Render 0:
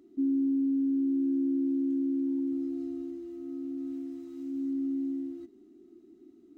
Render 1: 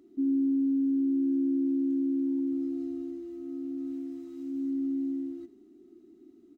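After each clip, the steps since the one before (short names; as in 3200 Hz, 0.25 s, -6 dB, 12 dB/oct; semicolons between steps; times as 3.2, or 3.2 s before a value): echo 84 ms -15.5 dB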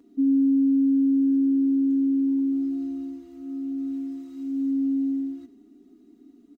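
comb 4.2 ms, depth 95%; gain +1.5 dB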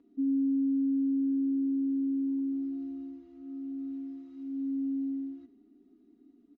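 air absorption 180 m; gain -7.5 dB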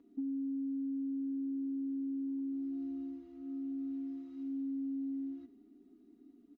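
compressor, threshold -36 dBFS, peak gain reduction 9.5 dB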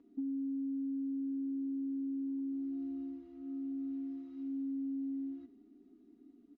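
air absorption 73 m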